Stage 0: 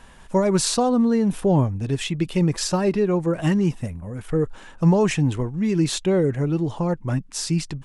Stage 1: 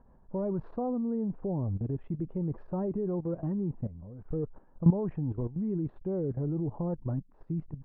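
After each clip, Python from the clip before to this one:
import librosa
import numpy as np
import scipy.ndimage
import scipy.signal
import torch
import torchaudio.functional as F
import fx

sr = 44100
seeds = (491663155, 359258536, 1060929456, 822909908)

y = scipy.signal.sosfilt(scipy.signal.bessel(4, 660.0, 'lowpass', norm='mag', fs=sr, output='sos'), x)
y = fx.level_steps(y, sr, step_db=14)
y = y * librosa.db_to_amplitude(-2.5)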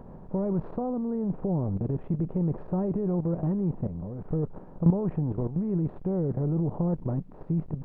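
y = fx.bin_compress(x, sr, power=0.6)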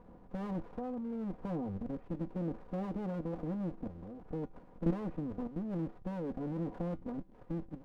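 y = fx.lower_of_two(x, sr, delay_ms=4.1)
y = fx.comb_fb(y, sr, f0_hz=110.0, decay_s=0.24, harmonics='odd', damping=0.0, mix_pct=50)
y = y * librosa.db_to_amplitude(-4.0)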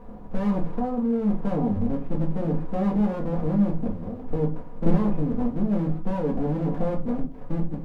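y = fx.room_shoebox(x, sr, seeds[0], volume_m3=160.0, walls='furnished', distance_m=1.6)
y = y * librosa.db_to_amplitude(8.5)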